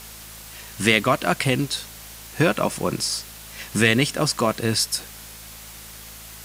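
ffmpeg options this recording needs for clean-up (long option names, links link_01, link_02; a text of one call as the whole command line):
ffmpeg -i in.wav -af "adeclick=threshold=4,bandreject=frequency=54.2:width_type=h:width=4,bandreject=frequency=108.4:width_type=h:width=4,bandreject=frequency=162.6:width_type=h:width=4,bandreject=frequency=216.8:width_type=h:width=4,afwtdn=0.01" out.wav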